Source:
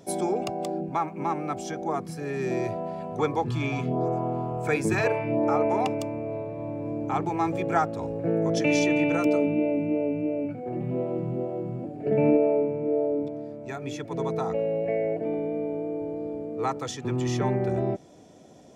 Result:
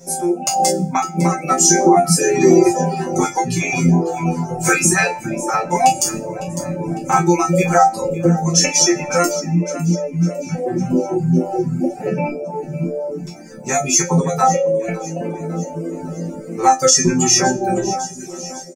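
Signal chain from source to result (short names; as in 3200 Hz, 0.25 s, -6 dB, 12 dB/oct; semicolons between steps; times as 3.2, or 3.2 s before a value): reverb removal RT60 1.3 s; compressor 3:1, threshold -34 dBFS, peak gain reduction 12 dB; comb 5.3 ms, depth 76%; AGC gain up to 14.5 dB; 1.5–3.02 bell 360 Hz +11.5 dB 0.92 oct; on a send: split-band echo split 300 Hz, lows 0.346 s, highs 0.554 s, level -16 dB; on the sum: flange 0.35 Hz, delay 7.1 ms, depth 5.2 ms, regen -39%; resonant high shelf 4700 Hz +8 dB, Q 3; resonator bank F3 fifth, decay 0.49 s; reverb removal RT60 0.69 s; maximiser +29 dB; gain -1 dB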